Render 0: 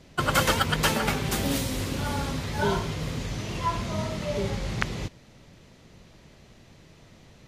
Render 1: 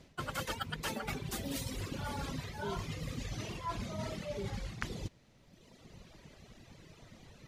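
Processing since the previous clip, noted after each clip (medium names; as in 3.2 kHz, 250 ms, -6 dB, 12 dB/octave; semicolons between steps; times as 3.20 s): reverb removal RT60 1.5 s; reverse; compression 6:1, threshold -36 dBFS, peak gain reduction 17 dB; reverse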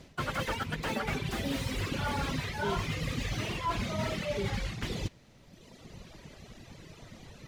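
dynamic bell 2.4 kHz, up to +6 dB, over -56 dBFS, Q 0.75; slew-rate limiter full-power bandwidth 22 Hz; trim +6 dB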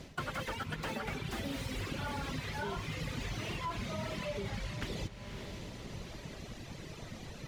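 echo that smears into a reverb 555 ms, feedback 44%, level -14 dB; compression 6:1, threshold -39 dBFS, peak gain reduction 12 dB; trim +3.5 dB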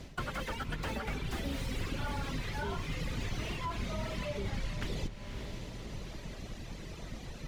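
octave divider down 2 oct, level +2 dB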